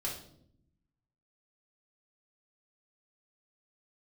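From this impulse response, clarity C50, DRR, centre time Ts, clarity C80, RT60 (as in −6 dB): 5.5 dB, −4.5 dB, 32 ms, 10.0 dB, 0.65 s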